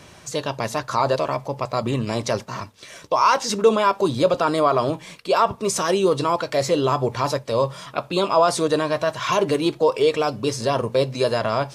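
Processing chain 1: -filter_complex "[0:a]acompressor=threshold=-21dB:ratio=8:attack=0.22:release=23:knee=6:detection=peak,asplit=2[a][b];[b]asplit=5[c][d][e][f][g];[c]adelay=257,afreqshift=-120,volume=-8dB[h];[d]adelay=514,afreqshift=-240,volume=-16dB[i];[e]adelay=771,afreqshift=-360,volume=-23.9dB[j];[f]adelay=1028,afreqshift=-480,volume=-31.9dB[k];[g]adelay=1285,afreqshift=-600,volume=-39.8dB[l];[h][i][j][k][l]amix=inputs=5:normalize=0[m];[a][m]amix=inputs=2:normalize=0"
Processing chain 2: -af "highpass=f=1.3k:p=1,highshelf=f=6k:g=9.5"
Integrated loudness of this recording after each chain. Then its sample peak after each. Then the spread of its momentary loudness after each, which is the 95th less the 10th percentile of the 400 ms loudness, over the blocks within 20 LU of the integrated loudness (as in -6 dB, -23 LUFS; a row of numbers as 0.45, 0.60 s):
-27.5, -25.5 LUFS; -15.0, -7.0 dBFS; 5, 10 LU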